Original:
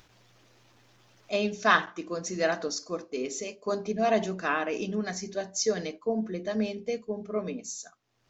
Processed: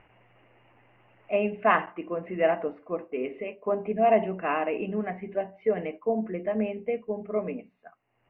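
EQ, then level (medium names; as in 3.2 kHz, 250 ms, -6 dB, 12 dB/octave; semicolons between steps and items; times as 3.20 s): dynamic bell 1.6 kHz, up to -5 dB, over -45 dBFS, Q 1.9; rippled Chebyshev low-pass 2.9 kHz, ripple 6 dB; +5.5 dB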